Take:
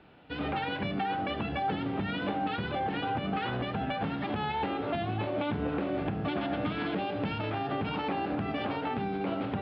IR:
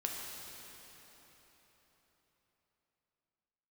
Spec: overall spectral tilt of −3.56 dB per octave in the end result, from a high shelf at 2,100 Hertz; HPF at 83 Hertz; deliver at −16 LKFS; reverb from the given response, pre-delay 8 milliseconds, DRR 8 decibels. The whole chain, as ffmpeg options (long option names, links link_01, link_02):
-filter_complex "[0:a]highpass=83,highshelf=frequency=2100:gain=6.5,asplit=2[link_01][link_02];[1:a]atrim=start_sample=2205,adelay=8[link_03];[link_02][link_03]afir=irnorm=-1:irlink=0,volume=-10.5dB[link_04];[link_01][link_04]amix=inputs=2:normalize=0,volume=15dB"